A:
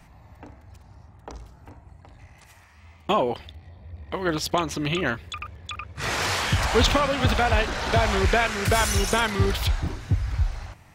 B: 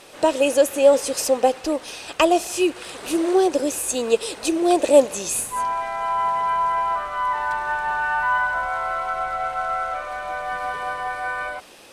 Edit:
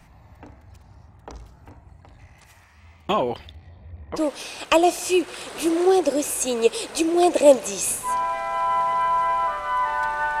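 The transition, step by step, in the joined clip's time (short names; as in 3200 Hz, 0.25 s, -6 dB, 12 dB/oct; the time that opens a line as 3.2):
A
3.54–4.2 LPF 12000 Hz -> 1200 Hz
4.17 switch to B from 1.65 s, crossfade 0.06 s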